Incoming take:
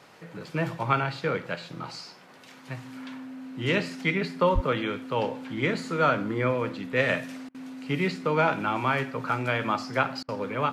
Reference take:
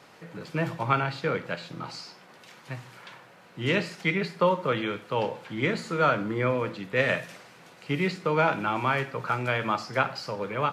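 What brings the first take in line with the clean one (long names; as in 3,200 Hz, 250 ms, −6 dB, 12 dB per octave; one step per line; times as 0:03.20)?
notch filter 260 Hz, Q 30
0:04.54–0:04.66: high-pass filter 140 Hz 24 dB per octave
repair the gap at 0:07.49/0:10.23, 54 ms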